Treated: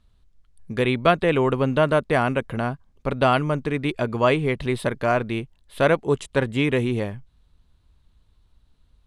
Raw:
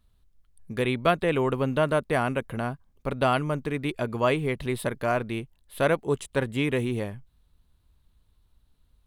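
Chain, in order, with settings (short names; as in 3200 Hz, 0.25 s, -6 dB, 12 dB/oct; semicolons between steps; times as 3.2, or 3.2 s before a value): LPF 7700 Hz 12 dB/oct; gain +4.5 dB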